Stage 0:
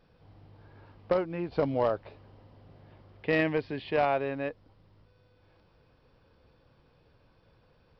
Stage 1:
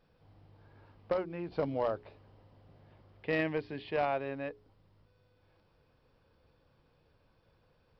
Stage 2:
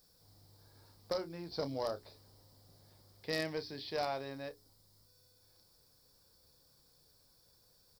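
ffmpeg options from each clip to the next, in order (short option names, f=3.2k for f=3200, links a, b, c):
-af "bandreject=f=60:t=h:w=6,bandreject=f=120:t=h:w=6,bandreject=f=180:t=h:w=6,bandreject=f=240:t=h:w=6,bandreject=f=300:t=h:w=6,bandreject=f=360:t=h:w=6,bandreject=f=420:t=h:w=6,volume=-5dB"
-filter_complex "[0:a]aexciter=amount=13.4:drive=8.5:freq=4.4k,asplit=2[a][b];[b]adelay=30,volume=-12dB[c];[a][c]amix=inputs=2:normalize=0,volume=-5.5dB"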